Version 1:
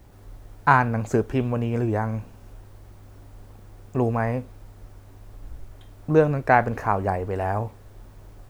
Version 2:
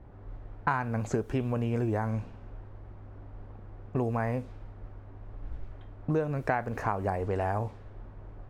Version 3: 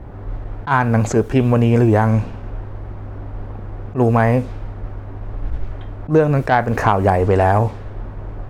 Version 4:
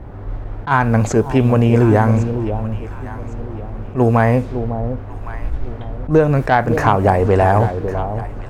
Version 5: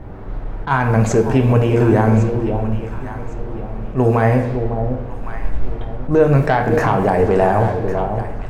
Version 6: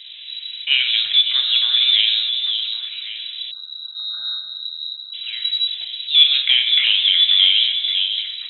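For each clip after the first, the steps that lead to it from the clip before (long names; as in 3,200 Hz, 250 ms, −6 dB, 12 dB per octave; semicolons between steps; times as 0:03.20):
low-pass that shuts in the quiet parts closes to 1,400 Hz, open at −20.5 dBFS; downward compressor 5 to 1, threshold −26 dBFS, peak gain reduction 13.5 dB
in parallel at −3.5 dB: sine wavefolder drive 5 dB, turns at −12.5 dBFS; on the sum: level that may rise only so fast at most 250 dB per second; level +7 dB
delay that swaps between a low-pass and a high-pass 553 ms, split 820 Hz, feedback 52%, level −8.5 dB; level +1 dB
brickwall limiter −7 dBFS, peak gain reduction 5.5 dB; on a send at −4 dB: convolution reverb RT60 1.1 s, pre-delay 4 ms
flat-topped bell 840 Hz +11 dB 2.9 octaves; time-frequency box erased 0:03.51–0:05.14, 230–2,300 Hz; voice inversion scrambler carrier 3,900 Hz; level −10 dB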